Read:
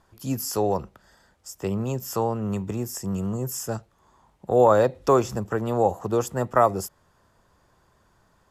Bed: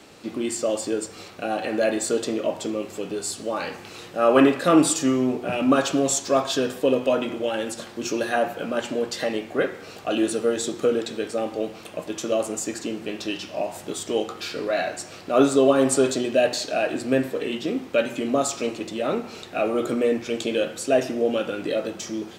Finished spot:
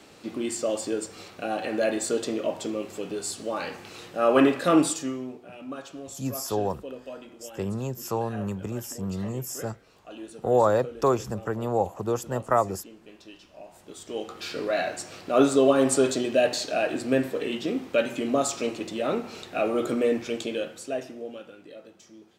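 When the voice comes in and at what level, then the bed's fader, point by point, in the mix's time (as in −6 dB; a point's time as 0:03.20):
5.95 s, −3.5 dB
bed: 0:04.77 −3 dB
0:05.48 −18.5 dB
0:13.61 −18.5 dB
0:14.55 −2 dB
0:20.22 −2 dB
0:21.66 −20 dB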